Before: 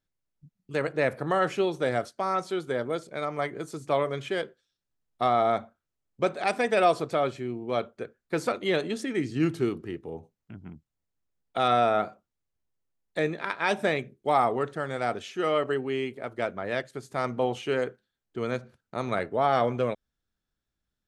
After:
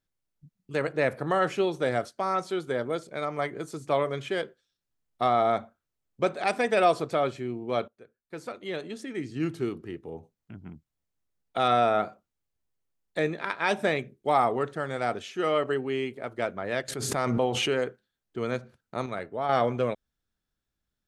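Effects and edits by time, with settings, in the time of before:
7.88–10.64 fade in, from -18 dB
16.88–17.71 backwards sustainer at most 29 dB/s
19.06–19.49 gain -6 dB

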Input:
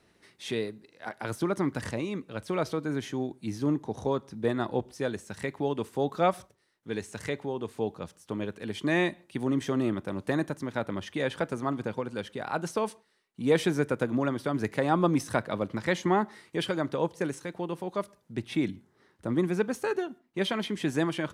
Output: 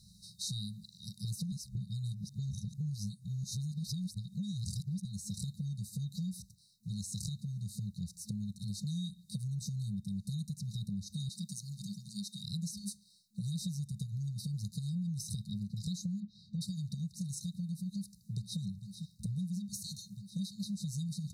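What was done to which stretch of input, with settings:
1.52–5.05 reverse
11.29–12.44 HPF 210 Hz 24 dB/oct
16.2–16.61 air absorption 230 m
17.94–18.6 echo throw 0.45 s, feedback 85%, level -16 dB
whole clip: FFT band-reject 210–3700 Hz; compressor 6:1, threshold -47 dBFS; gain +11 dB

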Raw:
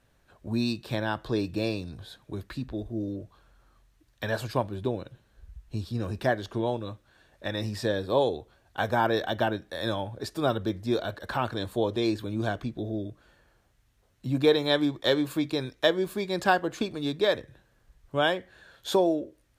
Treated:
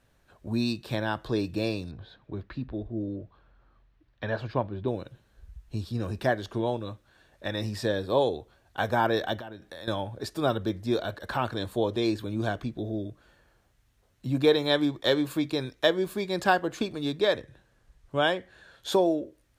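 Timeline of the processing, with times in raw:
1.91–4.88 air absorption 250 m
9.37–9.88 compressor, threshold -38 dBFS
17.19–18.92 LPF 12000 Hz

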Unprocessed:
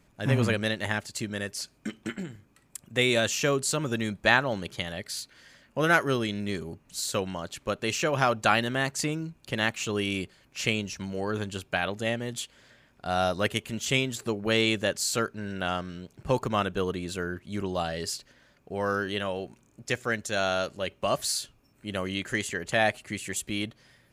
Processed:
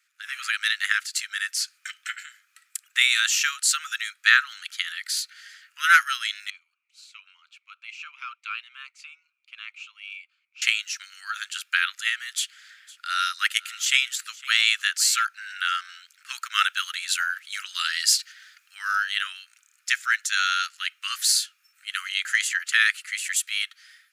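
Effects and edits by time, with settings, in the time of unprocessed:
6.5–10.62 vowel sweep a-u 3.9 Hz
12.36–15.25 echo 0.508 s -21 dB
16.55–18.75 tilt shelf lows -6 dB, about 770 Hz
whole clip: Chebyshev high-pass 1300 Hz, order 6; AGC gain up to 9 dB

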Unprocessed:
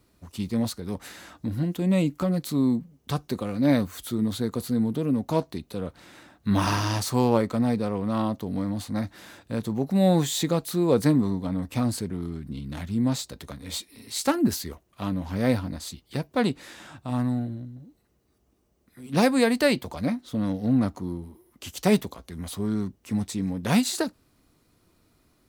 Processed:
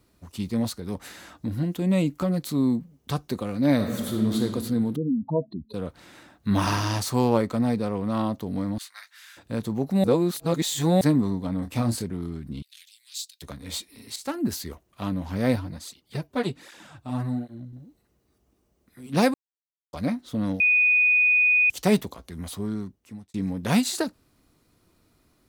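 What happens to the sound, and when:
3.75–4.42 reverb throw, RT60 1.8 s, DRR 1 dB
4.96–5.74 spectral contrast raised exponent 3.1
8.78–9.37 HPF 1400 Hz 24 dB/oct
10.04–11.01 reverse
11.59–12.04 doubler 26 ms -7 dB
12.62–13.42 inverse Chebyshev high-pass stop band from 660 Hz, stop band 70 dB
14.16–14.71 fade in linear, from -13 dB
15.56–17.73 tape flanging out of phase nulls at 1.3 Hz, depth 6.4 ms
19.34–19.93 mute
20.6–21.7 bleep 2480 Hz -16 dBFS
22.46–23.34 fade out linear

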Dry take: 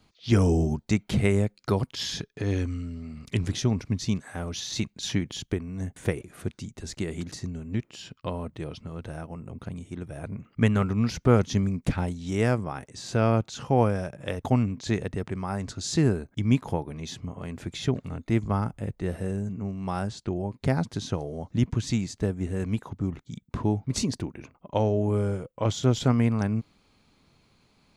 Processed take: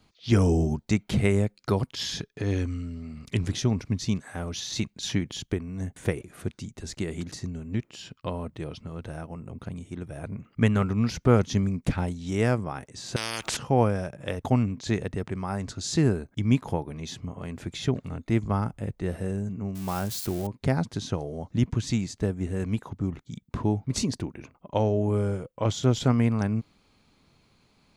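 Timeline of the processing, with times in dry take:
13.16–13.57 spectral compressor 10:1
19.75–20.47 switching spikes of -27.5 dBFS

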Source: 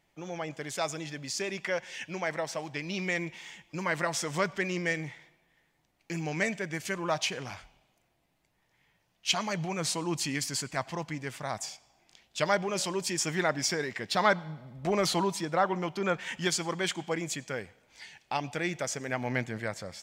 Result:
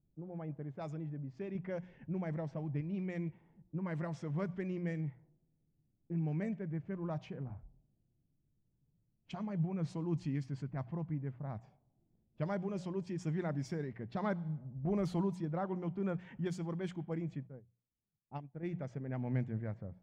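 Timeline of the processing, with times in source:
1.55–2.81 low shelf 330 Hz +7 dB
6.37–9.73 high shelf 2100 Hz -5 dB
17.47–18.63 upward expander 2.5:1, over -43 dBFS
whole clip: notches 60/120/180 Hz; low-pass opened by the level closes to 380 Hz, open at -25 dBFS; EQ curve 140 Hz 0 dB, 550 Hz -14 dB, 4600 Hz -28 dB; gain +3 dB

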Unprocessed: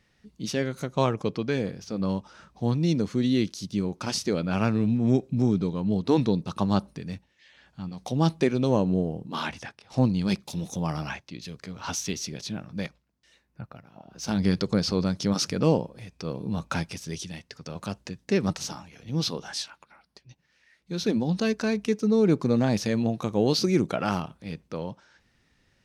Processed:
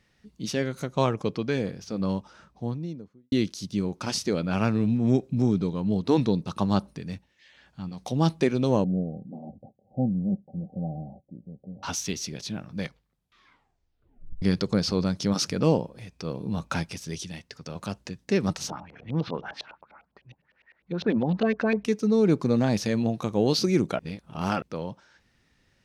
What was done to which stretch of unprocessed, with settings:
2.11–3.32 studio fade out
8.84–11.83 rippled Chebyshev low-pass 790 Hz, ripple 9 dB
12.79 tape stop 1.63 s
18.7–21.85 LFO low-pass saw up 9.9 Hz 530–3200 Hz
23.99–24.62 reverse

